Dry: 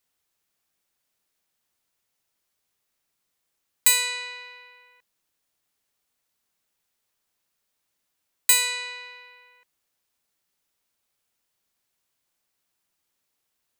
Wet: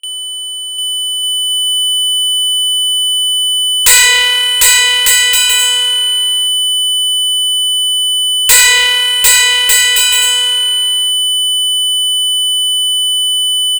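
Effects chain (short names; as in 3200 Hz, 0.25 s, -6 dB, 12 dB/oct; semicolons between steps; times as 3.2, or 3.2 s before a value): whine 3000 Hz -38 dBFS; low shelf 400 Hz -11 dB; doubler 33 ms -12.5 dB; sample leveller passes 3; gate with hold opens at -29 dBFS; bell 3500 Hz -6.5 dB 0.42 oct; bouncing-ball echo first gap 0.75 s, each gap 0.6×, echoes 5; sample leveller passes 3; Doppler distortion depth 0.26 ms; gain +2.5 dB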